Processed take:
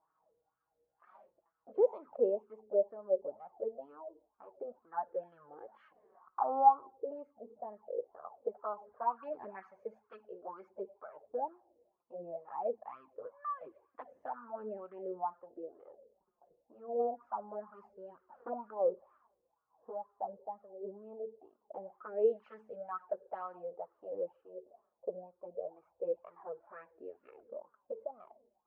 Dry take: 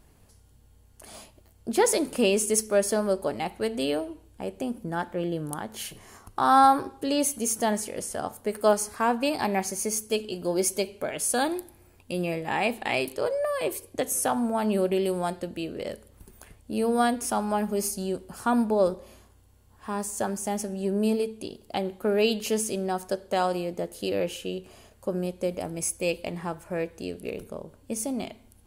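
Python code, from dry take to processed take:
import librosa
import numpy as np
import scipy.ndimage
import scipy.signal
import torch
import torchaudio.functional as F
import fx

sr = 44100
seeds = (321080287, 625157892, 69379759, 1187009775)

y = fx.env_flanger(x, sr, rest_ms=6.6, full_db=-19.5)
y = fx.wah_lfo(y, sr, hz=2.1, low_hz=460.0, high_hz=1300.0, q=7.2)
y = fx.spec_box(y, sr, start_s=12.75, length_s=1.03, low_hz=340.0, high_hz=1000.0, gain_db=-9)
y = fx.filter_lfo_lowpass(y, sr, shape='sine', hz=0.23, low_hz=600.0, high_hz=1700.0, q=1.5)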